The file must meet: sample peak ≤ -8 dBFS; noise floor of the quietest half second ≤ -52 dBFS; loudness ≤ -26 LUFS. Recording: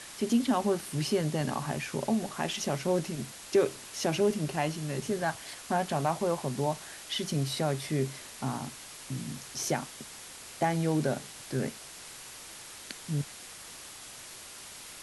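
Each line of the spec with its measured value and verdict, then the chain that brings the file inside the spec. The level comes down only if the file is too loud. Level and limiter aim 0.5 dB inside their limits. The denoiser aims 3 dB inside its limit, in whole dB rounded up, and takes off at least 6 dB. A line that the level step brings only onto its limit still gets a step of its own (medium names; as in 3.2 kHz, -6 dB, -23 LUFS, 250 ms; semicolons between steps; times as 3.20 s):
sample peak -14.5 dBFS: pass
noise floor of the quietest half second -46 dBFS: fail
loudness -31.5 LUFS: pass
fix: noise reduction 9 dB, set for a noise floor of -46 dBFS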